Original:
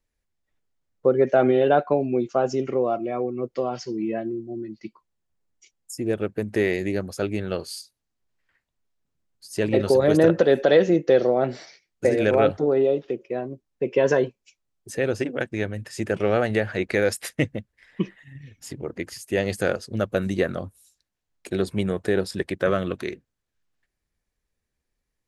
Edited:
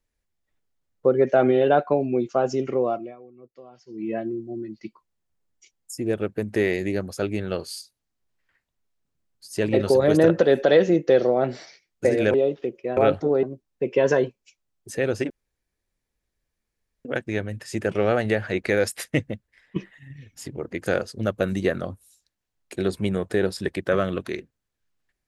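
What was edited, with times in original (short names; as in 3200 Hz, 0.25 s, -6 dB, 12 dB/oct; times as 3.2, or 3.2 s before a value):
2.88–4.14 dip -20 dB, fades 0.28 s
12.34–12.8 move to 13.43
15.3 insert room tone 1.75 s
17.58–18.01 fade out equal-power, to -11.5 dB
19.11–19.6 cut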